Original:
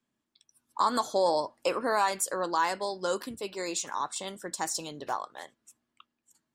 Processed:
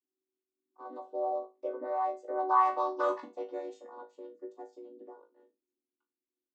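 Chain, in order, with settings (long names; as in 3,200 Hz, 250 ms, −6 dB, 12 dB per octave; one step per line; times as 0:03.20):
channel vocoder with a chord as carrier minor triad, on B3
source passing by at 0:03.02, 6 m/s, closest 1.4 metres
high-shelf EQ 3,600 Hz +8.5 dB
in parallel at −3.5 dB: soft clipping −28.5 dBFS, distortion −13 dB
on the sum: envelope filter 360–1,000 Hz, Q 3.5, up, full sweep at −28.5 dBFS
on a send: flutter between parallel walls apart 3.2 metres, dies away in 0.24 s
on the sum: level +7.5 dB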